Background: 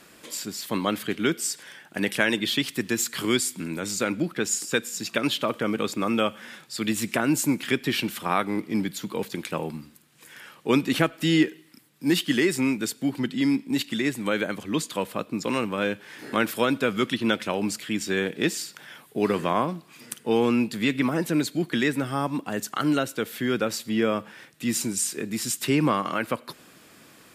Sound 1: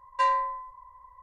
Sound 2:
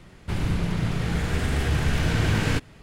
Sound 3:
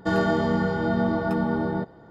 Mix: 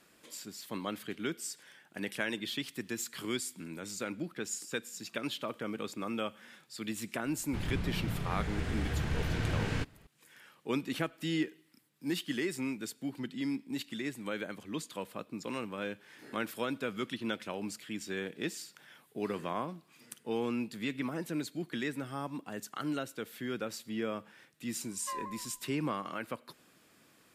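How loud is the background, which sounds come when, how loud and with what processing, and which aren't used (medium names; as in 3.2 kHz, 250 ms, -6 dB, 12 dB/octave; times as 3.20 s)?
background -12 dB
7.25 s: add 2 -10 dB + treble shelf 9 kHz -8 dB
24.88 s: add 1 -16 dB + vibrato with a chosen wave saw down 5.3 Hz, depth 100 cents
not used: 3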